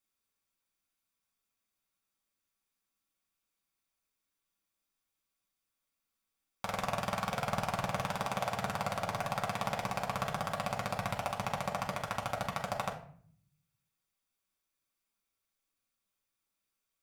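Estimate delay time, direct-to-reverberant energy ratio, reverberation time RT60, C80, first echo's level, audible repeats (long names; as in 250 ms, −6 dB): no echo audible, −1.0 dB, 0.55 s, 13.5 dB, no echo audible, no echo audible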